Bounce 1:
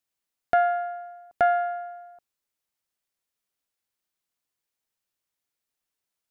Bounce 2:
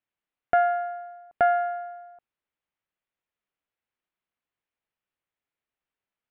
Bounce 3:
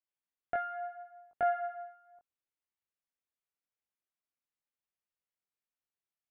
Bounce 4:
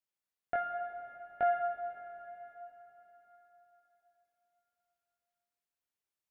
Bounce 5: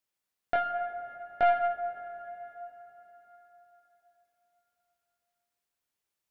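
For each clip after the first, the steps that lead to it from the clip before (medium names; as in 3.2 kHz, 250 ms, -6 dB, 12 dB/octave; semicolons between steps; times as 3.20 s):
low-pass 3 kHz 24 dB/octave
chorus 0.75 Hz, delay 19.5 ms, depth 4 ms; trim -7.5 dB
plate-style reverb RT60 4.1 s, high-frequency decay 0.95×, DRR 6 dB
tracing distortion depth 0.073 ms; trim +5.5 dB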